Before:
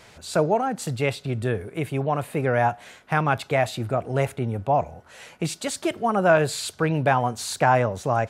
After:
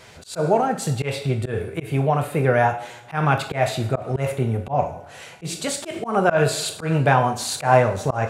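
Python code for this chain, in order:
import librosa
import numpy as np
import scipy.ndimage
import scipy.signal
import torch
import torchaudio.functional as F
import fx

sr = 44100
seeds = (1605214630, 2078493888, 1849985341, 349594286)

y = fx.rev_double_slope(x, sr, seeds[0], early_s=0.51, late_s=1.7, knee_db=-18, drr_db=4.5)
y = fx.auto_swell(y, sr, attack_ms=125.0)
y = y * librosa.db_to_amplitude(2.5)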